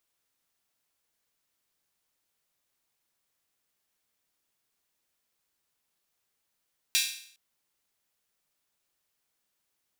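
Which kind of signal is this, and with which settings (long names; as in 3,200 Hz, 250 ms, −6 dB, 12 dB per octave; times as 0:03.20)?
open synth hi-hat length 0.41 s, high-pass 2,900 Hz, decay 0.59 s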